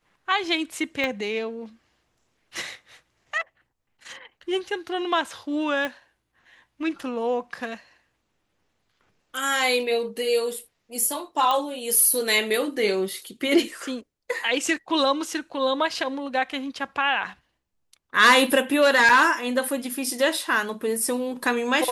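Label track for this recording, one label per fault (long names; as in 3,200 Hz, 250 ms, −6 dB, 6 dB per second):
1.040000	1.040000	click −14 dBFS
5.850000	5.850000	click −15 dBFS
11.510000	11.510000	click −12 dBFS
19.090000	19.090000	drop-out 4.5 ms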